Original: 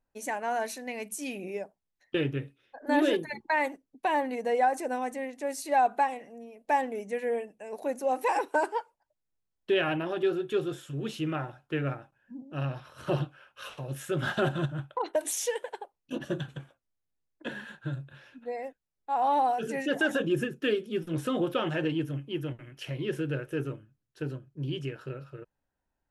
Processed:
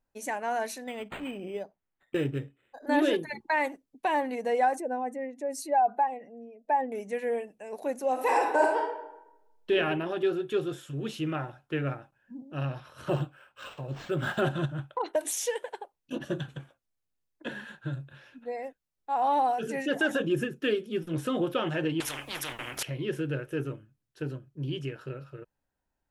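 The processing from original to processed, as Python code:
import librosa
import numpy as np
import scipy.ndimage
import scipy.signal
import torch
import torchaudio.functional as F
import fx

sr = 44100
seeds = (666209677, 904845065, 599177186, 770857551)

y = fx.resample_linear(x, sr, factor=8, at=(0.84, 2.86))
y = fx.spec_expand(y, sr, power=1.5, at=(4.76, 6.92))
y = fx.reverb_throw(y, sr, start_s=8.12, length_s=1.59, rt60_s=0.92, drr_db=-0.5)
y = fx.resample_linear(y, sr, factor=4, at=(13.08, 14.41))
y = fx.spectral_comp(y, sr, ratio=10.0, at=(22.0, 22.83))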